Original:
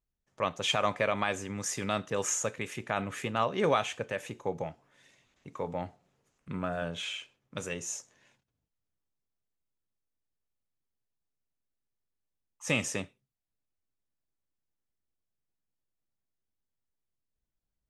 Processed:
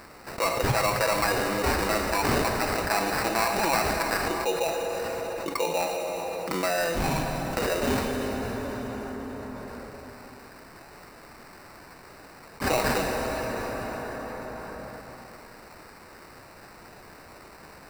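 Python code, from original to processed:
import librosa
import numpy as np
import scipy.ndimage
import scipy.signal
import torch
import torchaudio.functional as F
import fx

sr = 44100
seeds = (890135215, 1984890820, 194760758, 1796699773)

y = fx.lower_of_two(x, sr, delay_ms=1.1, at=(2.1, 4.25))
y = scipy.signal.sosfilt(scipy.signal.butter(4, 290.0, 'highpass', fs=sr, output='sos'), y)
y = fx.high_shelf(y, sr, hz=4900.0, db=10.0)
y = y + 0.78 * np.pad(y, (int(6.0 * sr / 1000.0), 0))[:len(y)]
y = fx.sample_hold(y, sr, seeds[0], rate_hz=3300.0, jitter_pct=0)
y = fx.rev_plate(y, sr, seeds[1], rt60_s=2.9, hf_ratio=0.75, predelay_ms=0, drr_db=10.0)
y = fx.env_flatten(y, sr, amount_pct=70)
y = F.gain(torch.from_numpy(y), -2.5).numpy()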